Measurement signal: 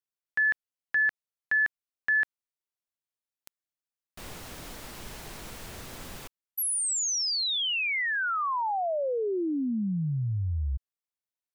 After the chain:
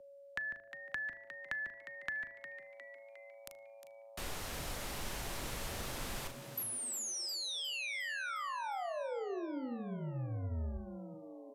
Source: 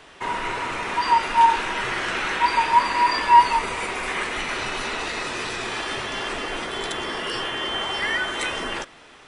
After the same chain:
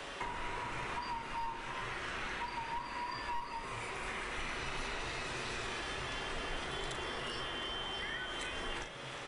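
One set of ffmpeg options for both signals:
-filter_complex "[0:a]asplit=2[s0][s1];[s1]adelay=38,volume=0.376[s2];[s0][s2]amix=inputs=2:normalize=0,aresample=32000,aresample=44100,aeval=exprs='clip(val(0),-1,0.237)':c=same,asplit=2[s3][s4];[s4]adelay=77,lowpass=f=1900:p=1,volume=0.158,asplit=2[s5][s6];[s6]adelay=77,lowpass=f=1900:p=1,volume=0.25[s7];[s5][s7]amix=inputs=2:normalize=0[s8];[s3][s8]amix=inputs=2:normalize=0,acompressor=threshold=0.0355:ratio=6:attack=48:release=906,aeval=exprs='val(0)+0.00158*sin(2*PI*560*n/s)':c=same,bandreject=f=104.9:t=h:w=4,bandreject=f=209.8:t=h:w=4,bandreject=f=314.7:t=h:w=4,bandreject=f=419.6:t=h:w=4,bandreject=f=524.5:t=h:w=4,bandreject=f=629.4:t=h:w=4,acrossover=split=97|330[s9][s10][s11];[s9]acompressor=threshold=0.00794:ratio=4[s12];[s10]acompressor=threshold=0.00112:ratio=4[s13];[s11]acompressor=threshold=0.00631:ratio=4[s14];[s12][s13][s14]amix=inputs=3:normalize=0,asplit=2[s15][s16];[s16]asplit=6[s17][s18][s19][s20][s21][s22];[s17]adelay=357,afreqshift=110,volume=0.299[s23];[s18]adelay=714,afreqshift=220,volume=0.164[s24];[s19]adelay=1071,afreqshift=330,volume=0.0902[s25];[s20]adelay=1428,afreqshift=440,volume=0.0495[s26];[s21]adelay=1785,afreqshift=550,volume=0.0272[s27];[s22]adelay=2142,afreqshift=660,volume=0.015[s28];[s23][s24][s25][s26][s27][s28]amix=inputs=6:normalize=0[s29];[s15][s29]amix=inputs=2:normalize=0,volume=1.41"

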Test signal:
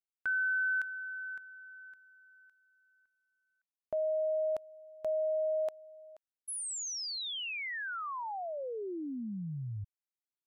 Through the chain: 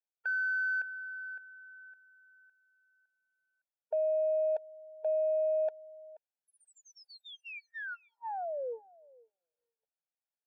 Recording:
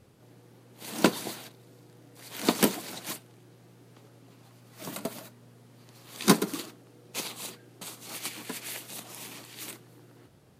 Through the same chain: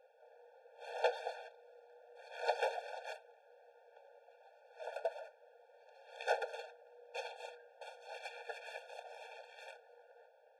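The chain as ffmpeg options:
-af "aeval=exprs='(tanh(15.8*val(0)+0.6)-tanh(0.6))/15.8':c=same,adynamicsmooth=sensitivity=0.5:basefreq=1900,afftfilt=real='re*eq(mod(floor(b*sr/1024/460),2),1)':imag='im*eq(mod(floor(b*sr/1024/460),2),1)':win_size=1024:overlap=0.75,volume=2"

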